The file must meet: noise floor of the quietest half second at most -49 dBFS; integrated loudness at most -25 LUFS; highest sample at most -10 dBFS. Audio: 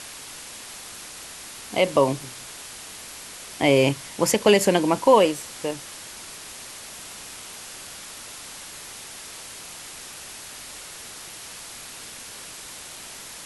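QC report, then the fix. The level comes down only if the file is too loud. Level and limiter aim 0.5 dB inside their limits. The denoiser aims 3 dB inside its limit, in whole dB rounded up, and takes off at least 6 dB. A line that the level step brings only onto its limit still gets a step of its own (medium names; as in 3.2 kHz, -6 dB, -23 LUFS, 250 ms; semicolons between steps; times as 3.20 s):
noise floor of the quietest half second -40 dBFS: fail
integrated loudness -21.0 LUFS: fail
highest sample -4.5 dBFS: fail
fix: noise reduction 8 dB, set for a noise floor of -40 dBFS; trim -4.5 dB; peak limiter -10.5 dBFS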